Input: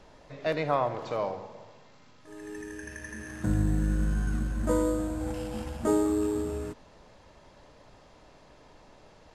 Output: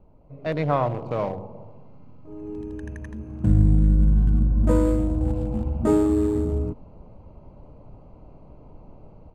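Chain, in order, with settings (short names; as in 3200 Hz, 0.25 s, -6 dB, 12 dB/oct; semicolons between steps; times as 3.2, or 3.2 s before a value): Wiener smoothing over 25 samples; tone controls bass +9 dB, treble -6 dB; AGC gain up to 10 dB; gain -5 dB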